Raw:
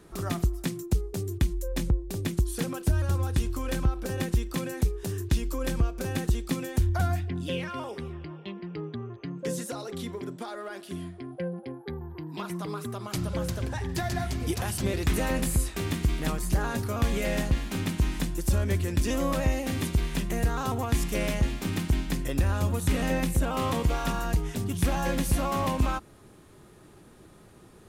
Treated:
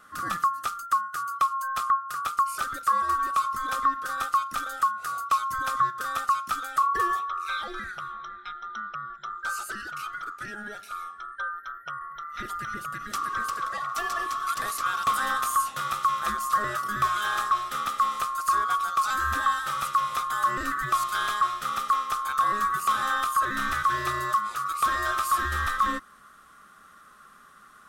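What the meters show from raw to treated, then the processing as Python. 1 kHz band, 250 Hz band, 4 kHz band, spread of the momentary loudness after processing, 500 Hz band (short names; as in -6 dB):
+13.5 dB, -14.5 dB, +1.5 dB, 11 LU, -10.5 dB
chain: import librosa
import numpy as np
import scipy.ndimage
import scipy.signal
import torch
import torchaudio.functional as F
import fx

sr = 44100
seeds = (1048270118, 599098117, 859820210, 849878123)

y = fx.band_swap(x, sr, width_hz=1000)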